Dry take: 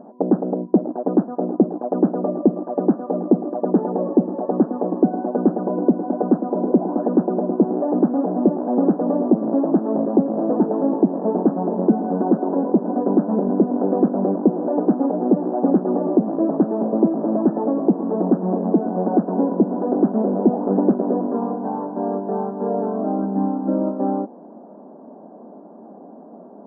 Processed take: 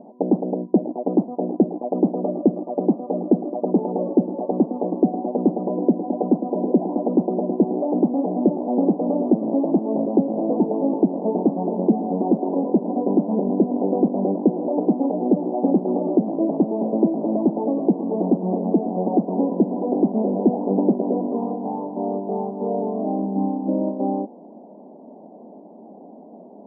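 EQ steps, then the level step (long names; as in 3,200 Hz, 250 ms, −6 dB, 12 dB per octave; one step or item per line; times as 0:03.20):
Butterworth low-pass 950 Hz 48 dB per octave
−1.5 dB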